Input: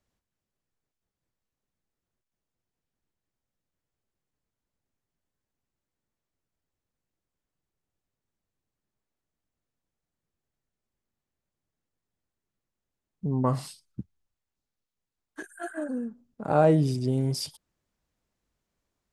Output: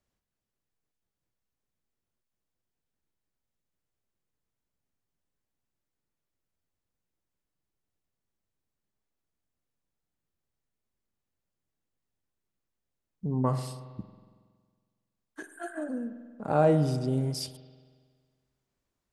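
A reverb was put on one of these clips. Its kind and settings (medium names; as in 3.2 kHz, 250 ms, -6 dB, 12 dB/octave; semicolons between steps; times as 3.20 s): spring tank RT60 1.7 s, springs 46 ms, chirp 30 ms, DRR 11 dB; trim -2.5 dB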